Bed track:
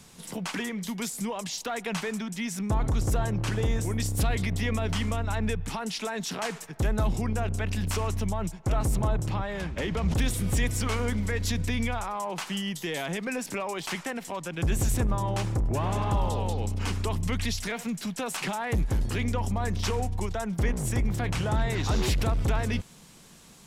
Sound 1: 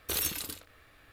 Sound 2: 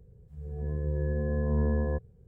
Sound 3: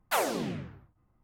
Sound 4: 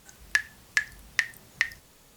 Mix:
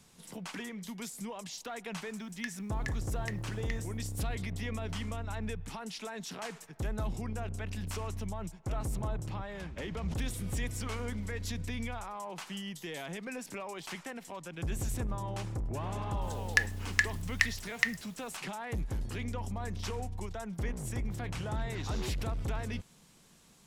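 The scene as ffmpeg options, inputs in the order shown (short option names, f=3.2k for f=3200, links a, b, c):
-filter_complex "[4:a]asplit=2[a][b];[0:a]volume=-9dB[c];[a]atrim=end=2.16,asetpts=PTS-STARTPTS,volume=-16.5dB,afade=t=in:d=0.004:c=hsin,afade=t=out:st=2.156:d=0.004:c=hsin,adelay=2090[d];[b]atrim=end=2.16,asetpts=PTS-STARTPTS,volume=-2dB,afade=t=in:d=0.004:c=hsin,afade=t=out:st=2.156:d=0.004:c=hsin,adelay=16220[e];[c][d][e]amix=inputs=3:normalize=0"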